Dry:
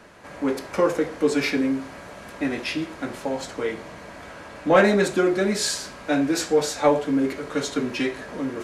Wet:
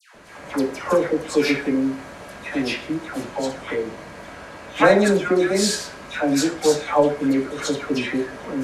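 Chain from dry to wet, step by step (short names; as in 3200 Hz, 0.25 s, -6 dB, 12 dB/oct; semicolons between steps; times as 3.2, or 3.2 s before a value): dispersion lows, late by 0.147 s, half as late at 1300 Hz; gain +2 dB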